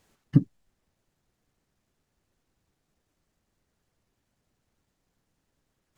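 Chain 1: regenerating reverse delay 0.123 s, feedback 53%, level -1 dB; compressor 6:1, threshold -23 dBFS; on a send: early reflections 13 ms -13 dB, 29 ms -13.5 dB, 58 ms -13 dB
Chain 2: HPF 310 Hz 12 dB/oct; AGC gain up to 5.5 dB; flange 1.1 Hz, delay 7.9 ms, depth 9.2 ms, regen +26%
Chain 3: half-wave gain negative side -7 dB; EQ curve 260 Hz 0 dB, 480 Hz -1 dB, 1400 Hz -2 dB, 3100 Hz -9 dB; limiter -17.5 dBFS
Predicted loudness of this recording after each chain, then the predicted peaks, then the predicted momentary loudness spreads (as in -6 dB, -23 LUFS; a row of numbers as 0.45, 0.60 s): -32.5, -36.5, -35.5 LUFS; -12.5, -18.5, -17.5 dBFS; 18, 8, 8 LU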